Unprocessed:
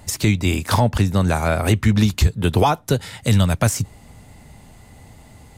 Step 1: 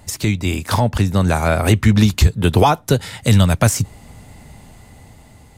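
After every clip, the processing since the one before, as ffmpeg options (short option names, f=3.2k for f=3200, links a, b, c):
-af "dynaudnorm=f=320:g=7:m=11.5dB,volume=-1dB"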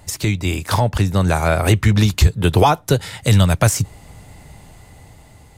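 -af "equalizer=f=230:t=o:w=0.26:g=-8.5"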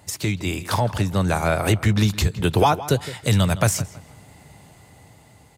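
-filter_complex "[0:a]highpass=96,asplit=2[a][b];[b]adelay=163,lowpass=f=3.5k:p=1,volume=-15.5dB,asplit=2[c][d];[d]adelay=163,lowpass=f=3.5k:p=1,volume=0.29,asplit=2[e][f];[f]adelay=163,lowpass=f=3.5k:p=1,volume=0.29[g];[a][c][e][g]amix=inputs=4:normalize=0,volume=-3.5dB"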